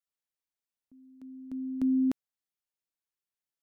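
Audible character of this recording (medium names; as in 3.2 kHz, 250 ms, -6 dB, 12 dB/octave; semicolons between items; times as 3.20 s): noise floor -93 dBFS; spectral tilt -8.0 dB/octave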